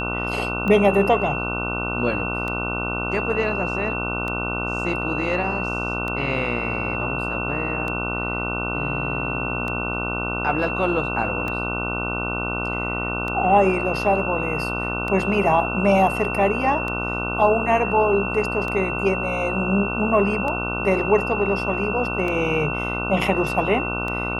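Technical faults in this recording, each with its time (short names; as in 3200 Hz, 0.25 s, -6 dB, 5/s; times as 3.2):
buzz 60 Hz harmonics 25 -28 dBFS
tick 33 1/3 rpm -16 dBFS
tone 2700 Hz -27 dBFS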